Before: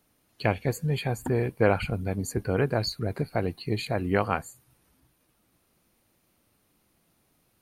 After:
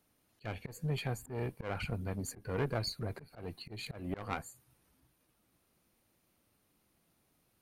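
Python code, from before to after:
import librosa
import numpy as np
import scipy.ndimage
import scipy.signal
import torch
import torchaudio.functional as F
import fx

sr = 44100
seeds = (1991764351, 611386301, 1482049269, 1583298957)

y = fx.diode_clip(x, sr, knee_db=-25.5)
y = fx.auto_swell(y, sr, attack_ms=183.0)
y = y * librosa.db_to_amplitude(-5.5)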